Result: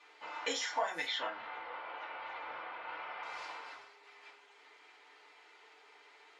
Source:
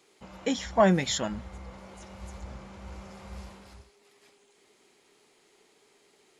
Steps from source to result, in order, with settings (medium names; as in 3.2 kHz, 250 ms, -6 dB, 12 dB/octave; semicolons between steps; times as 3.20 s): 1.06–3.23 s: low-pass 3.4 kHz 24 dB/octave; level-controlled noise filter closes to 2.6 kHz, open at -23.5 dBFS; high-pass 1 kHz 12 dB/octave; compression 12:1, threshold -42 dBFS, peak gain reduction 20.5 dB; FDN reverb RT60 0.32 s, low-frequency decay 0.7×, high-frequency decay 0.65×, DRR -5 dB; trim +4.5 dB